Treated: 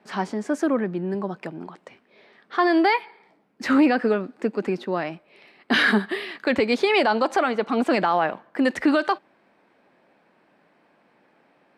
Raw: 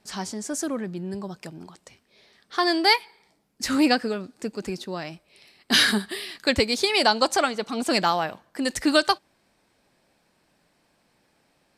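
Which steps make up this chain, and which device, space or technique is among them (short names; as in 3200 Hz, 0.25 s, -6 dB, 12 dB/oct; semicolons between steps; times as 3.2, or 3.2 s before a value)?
DJ mixer with the lows and highs turned down (three-band isolator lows -22 dB, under 170 Hz, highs -22 dB, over 2700 Hz; limiter -18 dBFS, peak gain reduction 10.5 dB); gain +7.5 dB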